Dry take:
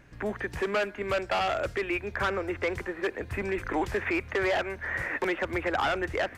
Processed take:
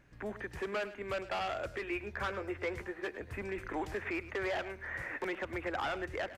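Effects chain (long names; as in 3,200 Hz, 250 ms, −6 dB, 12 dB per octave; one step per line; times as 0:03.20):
0:01.73–0:03.18: double-tracking delay 14 ms −8 dB
single-tap delay 105 ms −15 dB
level −8.5 dB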